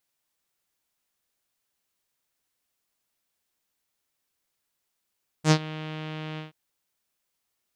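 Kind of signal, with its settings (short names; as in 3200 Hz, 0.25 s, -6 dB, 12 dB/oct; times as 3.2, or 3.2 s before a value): synth note saw D#3 12 dB/oct, low-pass 3100 Hz, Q 2.5, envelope 1.5 oct, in 0.18 s, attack 70 ms, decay 0.07 s, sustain -19.5 dB, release 0.14 s, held 0.94 s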